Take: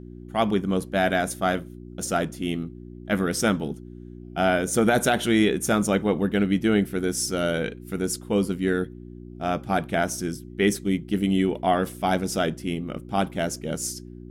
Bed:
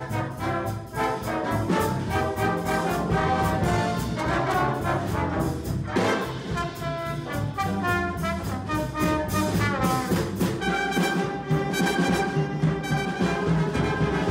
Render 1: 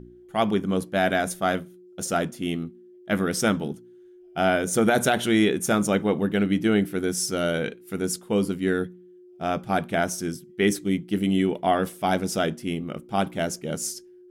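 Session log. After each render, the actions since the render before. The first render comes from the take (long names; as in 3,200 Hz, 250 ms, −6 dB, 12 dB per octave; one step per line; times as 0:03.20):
hum removal 60 Hz, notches 5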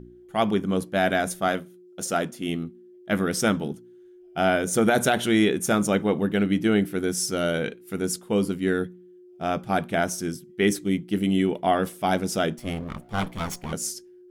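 0:01.48–0:02.49: high-pass filter 170 Hz 6 dB per octave
0:12.58–0:13.73: lower of the sound and its delayed copy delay 0.91 ms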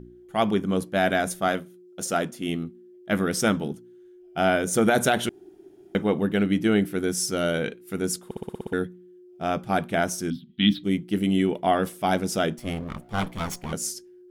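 0:05.29–0:05.95: fill with room tone
0:08.25: stutter in place 0.06 s, 8 plays
0:10.30–0:10.84: drawn EQ curve 130 Hz 0 dB, 270 Hz +8 dB, 410 Hz −29 dB, 730 Hz −10 dB, 1,200 Hz −7 dB, 2,100 Hz −6 dB, 3,600 Hz +14 dB, 6,400 Hz −26 dB, 9,200 Hz −28 dB, 15,000 Hz −11 dB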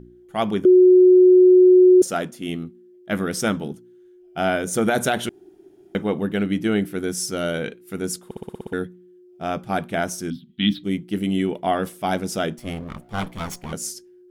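0:00.65–0:02.02: beep over 366 Hz −8 dBFS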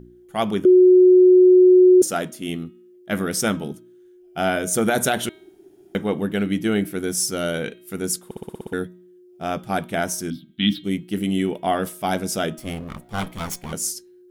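high-shelf EQ 6,800 Hz +8 dB
hum removal 317 Hz, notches 13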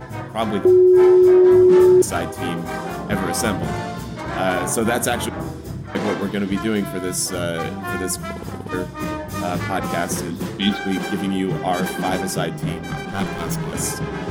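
mix in bed −2.5 dB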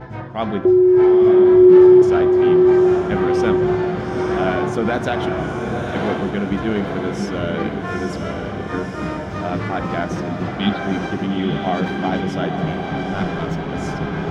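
high-frequency loss of the air 210 metres
feedback delay with all-pass diffusion 890 ms, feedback 54%, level −4 dB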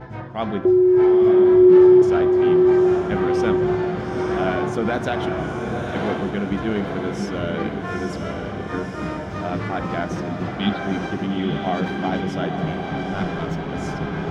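level −2.5 dB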